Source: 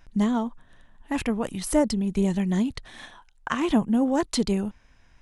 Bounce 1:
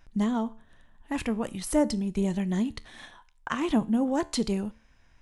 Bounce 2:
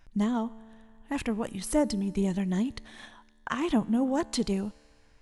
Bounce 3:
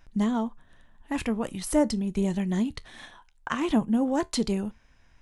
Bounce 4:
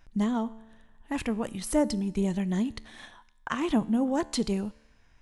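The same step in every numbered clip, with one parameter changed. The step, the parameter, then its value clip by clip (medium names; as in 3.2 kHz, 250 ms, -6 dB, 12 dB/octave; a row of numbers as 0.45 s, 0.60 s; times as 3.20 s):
feedback comb, decay: 0.41 s, 2.2 s, 0.18 s, 0.98 s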